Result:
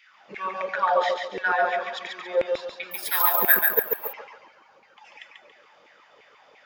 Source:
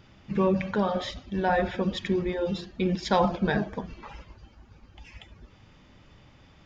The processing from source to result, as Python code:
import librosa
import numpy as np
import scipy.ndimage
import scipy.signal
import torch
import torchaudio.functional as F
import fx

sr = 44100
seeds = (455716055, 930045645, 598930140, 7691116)

p1 = scipy.signal.sosfilt(scipy.signal.butter(2, 83.0, 'highpass', fs=sr, output='sos'), x)
p2 = fx.add_hum(p1, sr, base_hz=50, snr_db=25)
p3 = fx.filter_lfo_highpass(p2, sr, shape='saw_down', hz=2.9, low_hz=430.0, high_hz=2300.0, q=6.3)
p4 = p3 + fx.echo_feedback(p3, sr, ms=140, feedback_pct=34, wet_db=-4.0, dry=0)
p5 = fx.resample_bad(p4, sr, factor=3, down='none', up='zero_stuff', at=(2.91, 4.13))
y = F.gain(torch.from_numpy(p5), -2.0).numpy()